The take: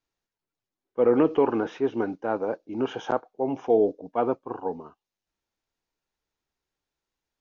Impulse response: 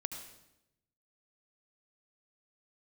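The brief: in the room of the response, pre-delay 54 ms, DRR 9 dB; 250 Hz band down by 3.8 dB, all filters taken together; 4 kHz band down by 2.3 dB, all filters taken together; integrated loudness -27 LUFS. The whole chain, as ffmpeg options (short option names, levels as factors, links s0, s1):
-filter_complex "[0:a]equalizer=f=250:t=o:g=-5,equalizer=f=4000:t=o:g=-3.5,asplit=2[s0][s1];[1:a]atrim=start_sample=2205,adelay=54[s2];[s1][s2]afir=irnorm=-1:irlink=0,volume=0.376[s3];[s0][s3]amix=inputs=2:normalize=0"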